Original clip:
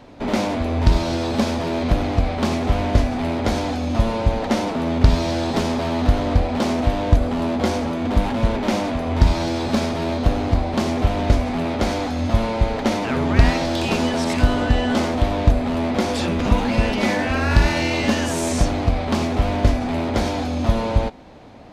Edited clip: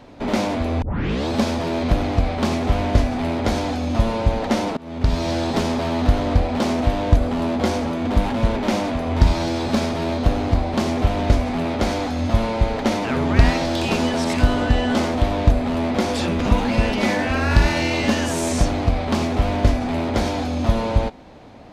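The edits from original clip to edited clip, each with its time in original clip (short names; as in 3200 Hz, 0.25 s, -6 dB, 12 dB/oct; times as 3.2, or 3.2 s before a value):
0.82 tape start 0.46 s
4.77–5.31 fade in, from -24 dB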